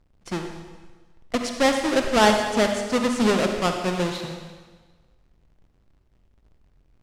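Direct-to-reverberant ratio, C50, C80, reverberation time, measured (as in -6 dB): 4.0 dB, 5.0 dB, 6.5 dB, 1.4 s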